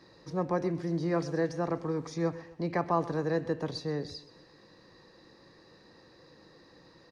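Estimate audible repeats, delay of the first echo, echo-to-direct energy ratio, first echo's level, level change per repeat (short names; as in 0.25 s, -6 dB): 3, 0.127 s, -17.0 dB, -18.0 dB, -7.5 dB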